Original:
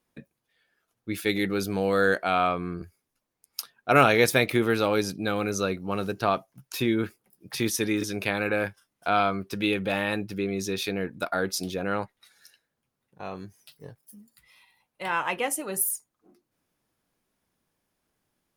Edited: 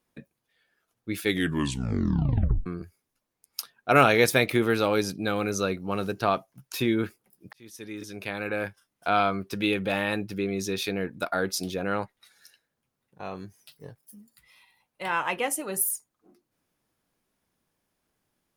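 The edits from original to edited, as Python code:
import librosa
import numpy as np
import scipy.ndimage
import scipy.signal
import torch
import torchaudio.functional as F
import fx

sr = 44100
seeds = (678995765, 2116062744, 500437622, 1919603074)

y = fx.edit(x, sr, fx.tape_stop(start_s=1.26, length_s=1.4),
    fx.fade_in_span(start_s=7.53, length_s=1.56), tone=tone)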